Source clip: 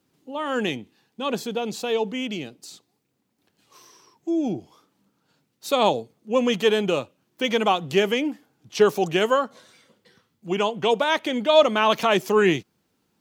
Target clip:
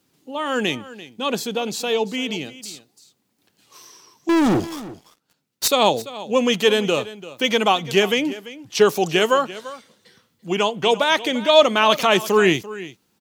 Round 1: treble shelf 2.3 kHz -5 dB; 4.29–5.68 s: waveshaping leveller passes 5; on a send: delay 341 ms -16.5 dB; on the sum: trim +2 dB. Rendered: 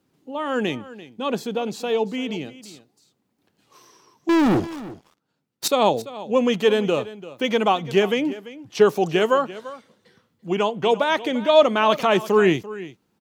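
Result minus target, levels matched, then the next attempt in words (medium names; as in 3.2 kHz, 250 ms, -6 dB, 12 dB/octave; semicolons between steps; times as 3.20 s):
4 kHz band -5.5 dB
treble shelf 2.3 kHz +6 dB; 4.29–5.68 s: waveshaping leveller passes 5; on a send: delay 341 ms -16.5 dB; on the sum: trim +2 dB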